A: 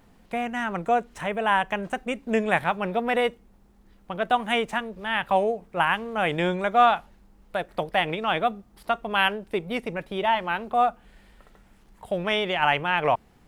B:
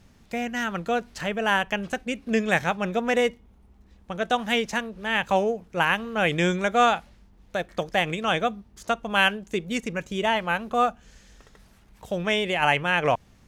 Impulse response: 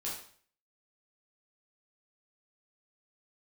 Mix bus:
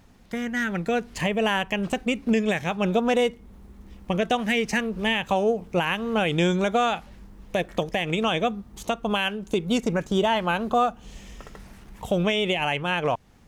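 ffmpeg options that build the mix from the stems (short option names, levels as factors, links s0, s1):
-filter_complex "[0:a]acompressor=threshold=0.0501:ratio=6,volume=0.841[s0];[1:a]volume=0.75[s1];[s0][s1]amix=inputs=2:normalize=0,dynaudnorm=f=210:g=11:m=2.82,alimiter=limit=0.224:level=0:latency=1:release=306"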